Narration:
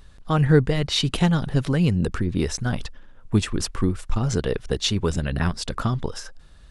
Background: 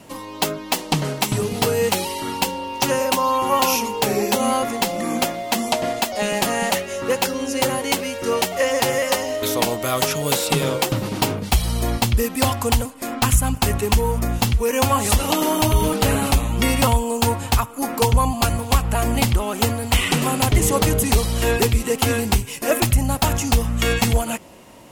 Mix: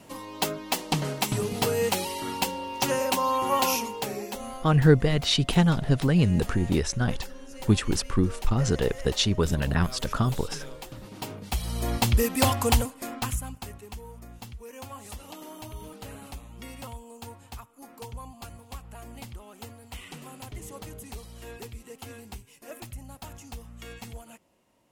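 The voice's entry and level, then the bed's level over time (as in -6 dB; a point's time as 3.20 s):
4.35 s, -1.0 dB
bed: 3.71 s -6 dB
4.65 s -21.5 dB
10.88 s -21.5 dB
12.12 s -3 dB
12.81 s -3 dB
13.81 s -23.5 dB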